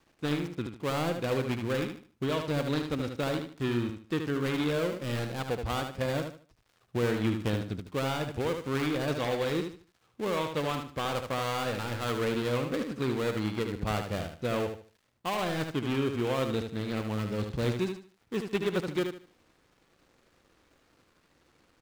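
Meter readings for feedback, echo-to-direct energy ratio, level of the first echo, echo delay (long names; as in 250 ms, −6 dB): 28%, −6.0 dB, −6.5 dB, 75 ms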